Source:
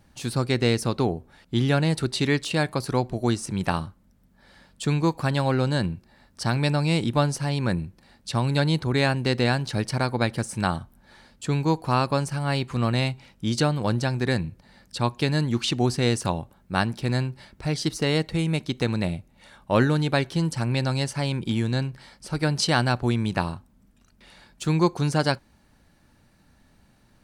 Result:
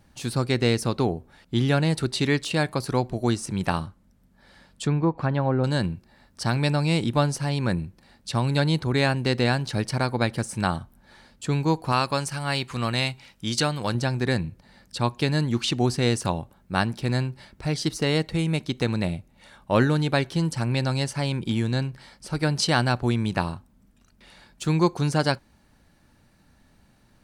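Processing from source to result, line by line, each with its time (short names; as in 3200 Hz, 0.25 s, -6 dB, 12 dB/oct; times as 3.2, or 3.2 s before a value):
3.86–5.64 treble ducked by the level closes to 1100 Hz, closed at -18 dBFS
11.92–13.95 tilt shelf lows -4.5 dB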